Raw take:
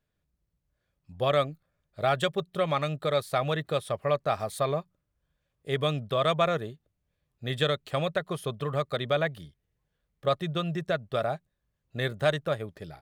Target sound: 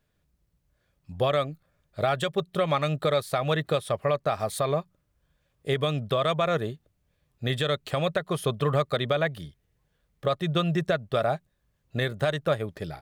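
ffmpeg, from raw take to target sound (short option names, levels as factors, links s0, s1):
-af "alimiter=limit=0.0841:level=0:latency=1:release=278,volume=2.24"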